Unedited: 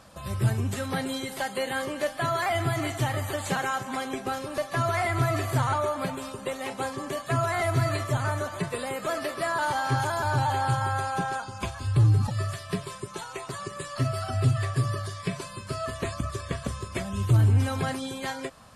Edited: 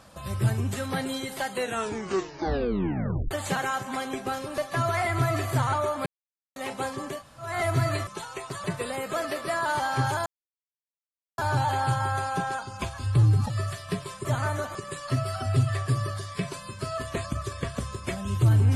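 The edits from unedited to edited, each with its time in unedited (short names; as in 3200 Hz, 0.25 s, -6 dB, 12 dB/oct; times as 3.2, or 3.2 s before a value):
1.52 tape stop 1.79 s
6.06–6.56 mute
7.18–7.49 room tone, crossfade 0.24 s
8.07–8.57 swap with 13.06–13.63
10.19 insert silence 1.12 s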